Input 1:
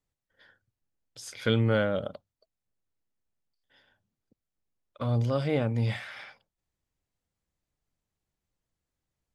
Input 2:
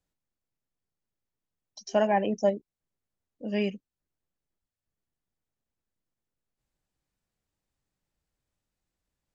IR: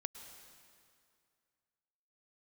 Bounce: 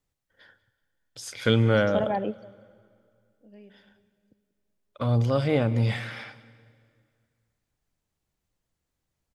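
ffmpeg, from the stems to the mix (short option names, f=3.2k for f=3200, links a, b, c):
-filter_complex "[0:a]volume=1.5dB,asplit=4[a][b][c][d];[b]volume=-7dB[e];[c]volume=-18dB[f];[1:a]lowpass=f=1.2k:p=1,acompressor=threshold=-27dB:ratio=2.5,volume=2dB,asplit=2[g][h];[h]volume=-21.5dB[i];[d]apad=whole_len=412129[j];[g][j]sidechaingate=range=-33dB:threshold=-57dB:ratio=16:detection=peak[k];[2:a]atrim=start_sample=2205[l];[e][i]amix=inputs=2:normalize=0[m];[m][l]afir=irnorm=-1:irlink=0[n];[f]aecho=0:1:188|376|564|752:1|0.3|0.09|0.027[o];[a][k][n][o]amix=inputs=4:normalize=0"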